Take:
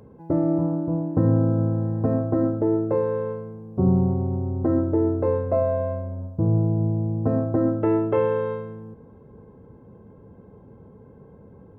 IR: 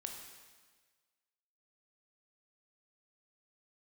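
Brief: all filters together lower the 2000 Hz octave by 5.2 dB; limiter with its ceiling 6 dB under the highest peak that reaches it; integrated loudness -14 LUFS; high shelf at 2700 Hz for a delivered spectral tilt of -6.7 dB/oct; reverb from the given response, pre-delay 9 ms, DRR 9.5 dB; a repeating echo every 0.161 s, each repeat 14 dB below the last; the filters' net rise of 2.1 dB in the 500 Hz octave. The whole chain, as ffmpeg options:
-filter_complex "[0:a]equalizer=f=500:t=o:g=3,equalizer=f=2k:t=o:g=-4.5,highshelf=f=2.7k:g=-7.5,alimiter=limit=-15dB:level=0:latency=1,aecho=1:1:161|322:0.2|0.0399,asplit=2[a][b];[1:a]atrim=start_sample=2205,adelay=9[c];[b][c]afir=irnorm=-1:irlink=0,volume=-7dB[d];[a][d]amix=inputs=2:normalize=0,volume=9dB"

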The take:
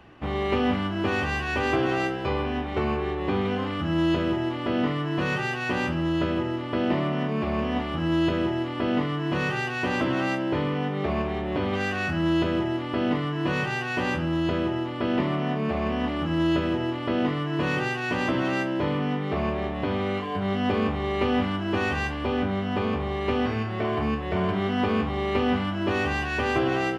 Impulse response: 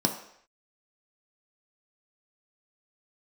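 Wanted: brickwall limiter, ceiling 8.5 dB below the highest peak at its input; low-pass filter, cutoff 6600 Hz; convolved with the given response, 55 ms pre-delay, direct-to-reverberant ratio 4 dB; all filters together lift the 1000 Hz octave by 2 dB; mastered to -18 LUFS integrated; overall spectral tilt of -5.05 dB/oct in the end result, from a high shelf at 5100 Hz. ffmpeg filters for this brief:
-filter_complex "[0:a]lowpass=6.6k,equalizer=f=1k:t=o:g=3,highshelf=f=5.1k:g=-8.5,alimiter=limit=-19.5dB:level=0:latency=1,asplit=2[a][b];[1:a]atrim=start_sample=2205,adelay=55[c];[b][c]afir=irnorm=-1:irlink=0,volume=-13.5dB[d];[a][d]amix=inputs=2:normalize=0,volume=6dB"

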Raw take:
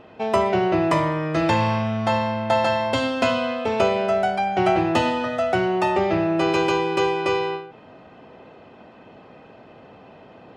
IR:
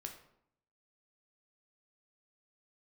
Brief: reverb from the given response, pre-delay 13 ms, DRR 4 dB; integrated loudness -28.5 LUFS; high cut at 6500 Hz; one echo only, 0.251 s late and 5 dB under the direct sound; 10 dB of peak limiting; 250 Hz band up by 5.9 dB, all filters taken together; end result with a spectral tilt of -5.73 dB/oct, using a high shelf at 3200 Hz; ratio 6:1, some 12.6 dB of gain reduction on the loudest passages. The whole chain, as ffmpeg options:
-filter_complex "[0:a]lowpass=6.5k,equalizer=f=250:t=o:g=8.5,highshelf=f=3.2k:g=-3,acompressor=threshold=-27dB:ratio=6,alimiter=level_in=1dB:limit=-24dB:level=0:latency=1,volume=-1dB,aecho=1:1:251:0.562,asplit=2[a][b];[1:a]atrim=start_sample=2205,adelay=13[c];[b][c]afir=irnorm=-1:irlink=0,volume=-0.5dB[d];[a][d]amix=inputs=2:normalize=0,volume=2.5dB"

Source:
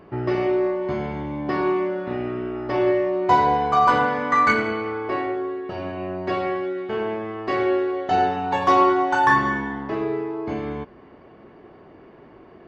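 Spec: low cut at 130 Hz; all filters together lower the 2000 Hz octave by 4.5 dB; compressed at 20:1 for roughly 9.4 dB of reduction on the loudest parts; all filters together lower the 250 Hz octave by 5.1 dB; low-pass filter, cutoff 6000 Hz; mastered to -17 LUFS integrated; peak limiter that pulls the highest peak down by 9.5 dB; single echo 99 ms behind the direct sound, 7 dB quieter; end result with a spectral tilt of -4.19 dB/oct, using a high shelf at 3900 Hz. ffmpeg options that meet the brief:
-af "highpass=130,lowpass=6k,equalizer=f=250:t=o:g=-8.5,equalizer=f=2k:t=o:g=-7,highshelf=f=3.9k:g=5.5,acompressor=threshold=-23dB:ratio=20,alimiter=limit=-23dB:level=0:latency=1,aecho=1:1:99:0.447,volume=14.5dB"

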